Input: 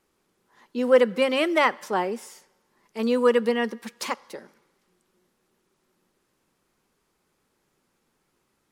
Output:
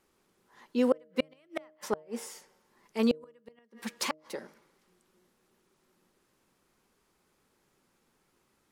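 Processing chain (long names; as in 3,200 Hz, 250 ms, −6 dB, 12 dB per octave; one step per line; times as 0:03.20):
gate with flip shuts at −14 dBFS, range −41 dB
hum removal 155 Hz, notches 4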